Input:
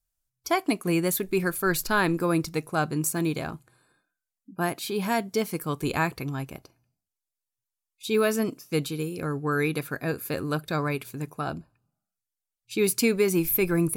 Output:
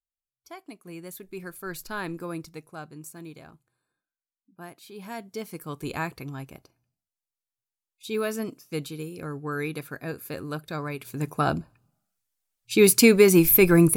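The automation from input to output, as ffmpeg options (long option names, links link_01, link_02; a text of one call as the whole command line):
ffmpeg -i in.wav -af "volume=13.5dB,afade=type=in:start_time=0.78:duration=1.35:silence=0.334965,afade=type=out:start_time=2.13:duration=0.77:silence=0.473151,afade=type=in:start_time=4.86:duration=1.05:silence=0.298538,afade=type=in:start_time=10.98:duration=0.4:silence=0.251189" out.wav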